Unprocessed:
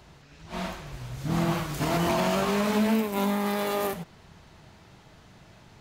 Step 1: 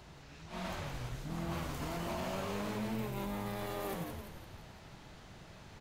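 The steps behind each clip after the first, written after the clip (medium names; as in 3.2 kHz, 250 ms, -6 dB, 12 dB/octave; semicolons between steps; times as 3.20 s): reverse; compression 5:1, threshold -36 dBFS, peak gain reduction 14 dB; reverse; frequency-shifting echo 171 ms, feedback 51%, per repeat -90 Hz, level -5 dB; trim -2 dB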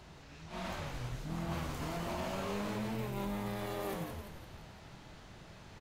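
treble shelf 12 kHz -4 dB; doubling 25 ms -11.5 dB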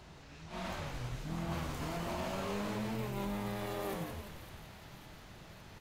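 feedback echo behind a high-pass 558 ms, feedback 66%, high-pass 1.7 kHz, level -12 dB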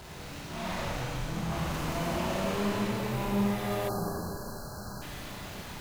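jump at every zero crossing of -45 dBFS; Schroeder reverb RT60 1.9 s, combs from 31 ms, DRR -4 dB; spectral selection erased 3.88–5.02 s, 1.7–4 kHz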